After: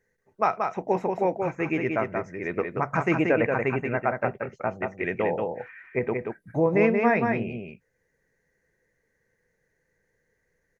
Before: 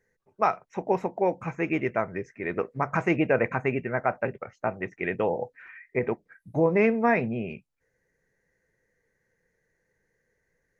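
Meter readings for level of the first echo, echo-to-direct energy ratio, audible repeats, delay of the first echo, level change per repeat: -4.5 dB, -4.5 dB, 1, 0.181 s, no steady repeat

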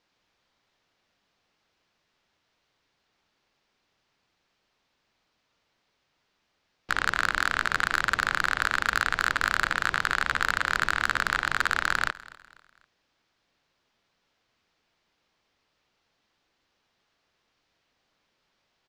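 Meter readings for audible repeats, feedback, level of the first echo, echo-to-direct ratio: 2, 40%, -20.5 dB, -20.0 dB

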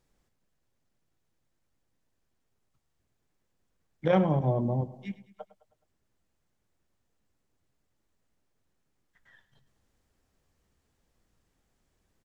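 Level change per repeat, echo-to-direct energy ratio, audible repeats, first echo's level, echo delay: -6.0 dB, -15.5 dB, 4, -17.0 dB, 0.105 s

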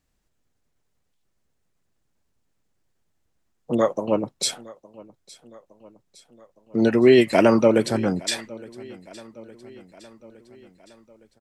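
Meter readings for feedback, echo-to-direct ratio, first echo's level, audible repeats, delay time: 58%, -20.5 dB, -22.0 dB, 3, 0.863 s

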